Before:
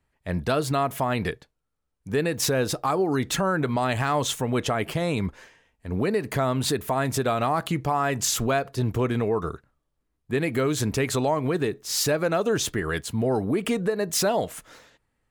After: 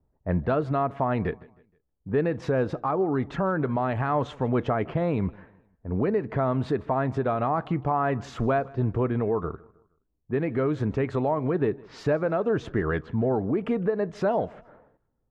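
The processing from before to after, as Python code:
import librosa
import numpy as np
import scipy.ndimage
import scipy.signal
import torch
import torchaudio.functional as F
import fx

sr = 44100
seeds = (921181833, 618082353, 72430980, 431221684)

p1 = fx.env_lowpass(x, sr, base_hz=660.0, full_db=-21.5)
p2 = scipy.signal.sosfilt(scipy.signal.butter(2, 1400.0, 'lowpass', fs=sr, output='sos'), p1)
p3 = fx.rider(p2, sr, range_db=10, speed_s=0.5)
y = p3 + fx.echo_feedback(p3, sr, ms=157, feedback_pct=39, wet_db=-23.5, dry=0)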